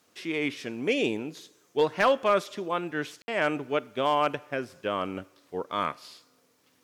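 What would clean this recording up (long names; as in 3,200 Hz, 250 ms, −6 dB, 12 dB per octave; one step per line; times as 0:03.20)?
clipped peaks rebuilt −14.5 dBFS
ambience match 0:03.22–0:03.28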